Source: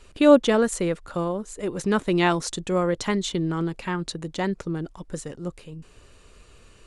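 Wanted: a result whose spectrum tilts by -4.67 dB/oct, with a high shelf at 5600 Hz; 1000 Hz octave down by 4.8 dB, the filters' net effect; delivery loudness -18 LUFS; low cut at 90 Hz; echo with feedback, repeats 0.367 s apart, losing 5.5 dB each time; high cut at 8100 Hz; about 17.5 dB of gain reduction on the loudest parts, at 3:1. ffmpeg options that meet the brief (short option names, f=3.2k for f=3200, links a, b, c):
-af "highpass=90,lowpass=8.1k,equalizer=f=1k:t=o:g=-6.5,highshelf=f=5.6k:g=5.5,acompressor=threshold=-35dB:ratio=3,aecho=1:1:367|734|1101|1468|1835|2202|2569:0.531|0.281|0.149|0.079|0.0419|0.0222|0.0118,volume=17dB"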